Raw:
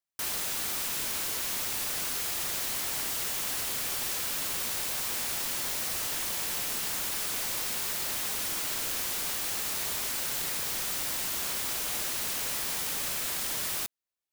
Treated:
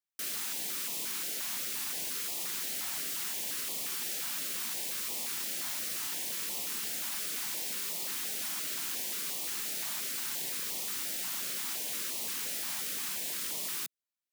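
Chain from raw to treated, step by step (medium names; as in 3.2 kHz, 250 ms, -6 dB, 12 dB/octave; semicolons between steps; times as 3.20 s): high-pass 160 Hz 24 dB/octave; step-sequenced notch 5.7 Hz 450–1500 Hz; trim -3.5 dB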